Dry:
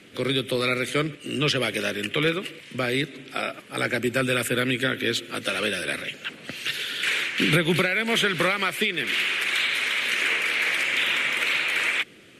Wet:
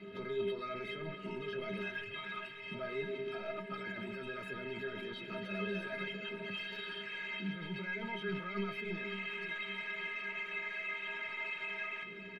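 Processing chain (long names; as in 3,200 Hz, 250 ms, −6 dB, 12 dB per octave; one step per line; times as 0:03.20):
spectral magnitudes quantised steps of 15 dB
0:01.81–0:02.66: Chebyshev band-stop filter 130–660 Hz, order 5
0:03.73–0:04.26: tilt shelving filter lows −5 dB, about 760 Hz
compressor whose output falls as the input rises −31 dBFS, ratio −1
brickwall limiter −23.5 dBFS, peak gain reduction 10.5 dB
gain into a clipping stage and back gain 31 dB
high-frequency loss of the air 390 metres
stiff-string resonator 190 Hz, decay 0.38 s, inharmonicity 0.03
repeating echo 554 ms, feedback 51%, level −12 dB
level +11.5 dB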